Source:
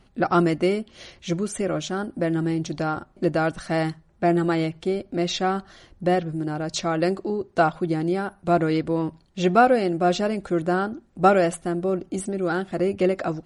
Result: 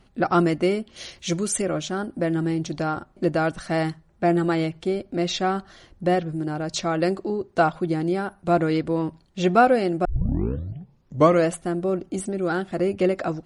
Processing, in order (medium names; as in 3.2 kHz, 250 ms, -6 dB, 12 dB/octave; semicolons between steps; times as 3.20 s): 0.96–1.62 s: treble shelf 3.4 kHz +10.5 dB; 10.05 s: tape start 1.45 s